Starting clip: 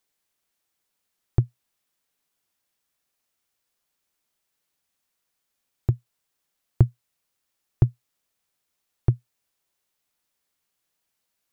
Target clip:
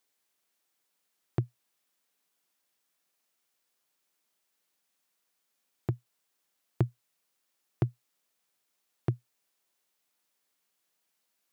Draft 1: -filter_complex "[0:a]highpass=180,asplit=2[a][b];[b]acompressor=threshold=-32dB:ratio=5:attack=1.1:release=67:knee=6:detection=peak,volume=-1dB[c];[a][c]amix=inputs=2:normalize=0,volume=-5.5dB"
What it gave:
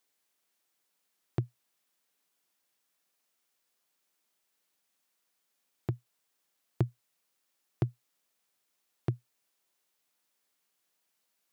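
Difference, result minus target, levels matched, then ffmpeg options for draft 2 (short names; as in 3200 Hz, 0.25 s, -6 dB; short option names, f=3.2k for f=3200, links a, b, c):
compressor: peak gain reduction +7 dB
-filter_complex "[0:a]highpass=180,asplit=2[a][b];[b]acompressor=threshold=-23dB:ratio=5:attack=1.1:release=67:knee=6:detection=peak,volume=-1dB[c];[a][c]amix=inputs=2:normalize=0,volume=-5.5dB"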